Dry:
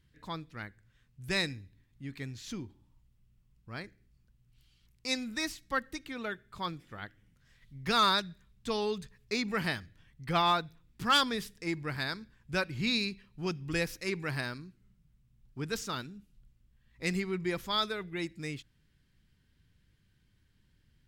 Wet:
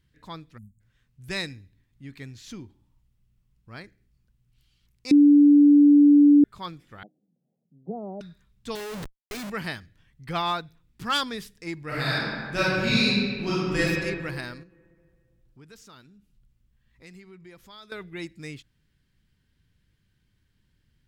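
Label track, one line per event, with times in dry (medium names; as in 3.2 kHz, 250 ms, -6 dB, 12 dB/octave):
0.580000	0.810000	spectral selection erased 240–6600 Hz
5.110000	6.440000	bleep 290 Hz -11 dBFS
7.030000	8.210000	Chebyshev band-pass 150–780 Hz, order 5
8.750000	9.500000	Schmitt trigger flips at -45 dBFS
11.860000	13.810000	reverb throw, RT60 1.8 s, DRR -9.5 dB
14.630000	17.920000	compression 2:1, threshold -57 dBFS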